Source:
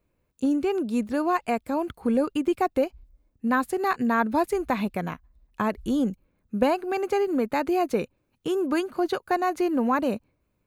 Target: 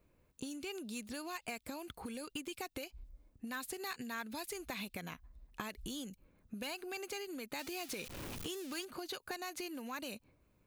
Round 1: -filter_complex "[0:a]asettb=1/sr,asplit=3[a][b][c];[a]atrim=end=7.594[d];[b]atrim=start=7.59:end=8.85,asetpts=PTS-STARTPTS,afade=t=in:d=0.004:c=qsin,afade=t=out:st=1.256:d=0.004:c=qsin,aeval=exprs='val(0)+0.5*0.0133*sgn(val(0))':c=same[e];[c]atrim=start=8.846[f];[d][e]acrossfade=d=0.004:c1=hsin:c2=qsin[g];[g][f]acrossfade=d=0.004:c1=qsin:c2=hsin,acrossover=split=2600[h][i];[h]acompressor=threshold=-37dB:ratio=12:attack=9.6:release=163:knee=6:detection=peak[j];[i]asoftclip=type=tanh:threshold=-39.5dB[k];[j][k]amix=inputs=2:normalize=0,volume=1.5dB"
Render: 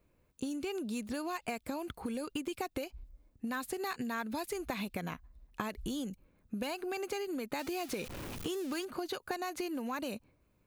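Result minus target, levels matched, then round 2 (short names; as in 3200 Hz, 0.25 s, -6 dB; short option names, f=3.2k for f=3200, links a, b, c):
compressor: peak gain reduction -7.5 dB
-filter_complex "[0:a]asettb=1/sr,asplit=3[a][b][c];[a]atrim=end=7.594[d];[b]atrim=start=7.59:end=8.85,asetpts=PTS-STARTPTS,afade=t=in:d=0.004:c=qsin,afade=t=out:st=1.256:d=0.004:c=qsin,aeval=exprs='val(0)+0.5*0.0133*sgn(val(0))':c=same[e];[c]atrim=start=8.846[f];[d][e]acrossfade=d=0.004:c1=hsin:c2=qsin[g];[g][f]acrossfade=d=0.004:c1=qsin:c2=hsin,acrossover=split=2600[h][i];[h]acompressor=threshold=-45dB:ratio=12:attack=9.6:release=163:knee=6:detection=peak[j];[i]asoftclip=type=tanh:threshold=-39.5dB[k];[j][k]amix=inputs=2:normalize=0,volume=1.5dB"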